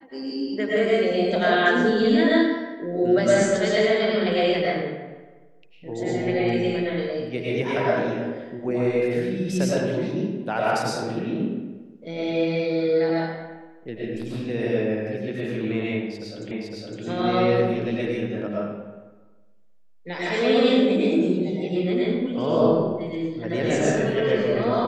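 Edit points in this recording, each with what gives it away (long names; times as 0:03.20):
0:16.51: the same again, the last 0.51 s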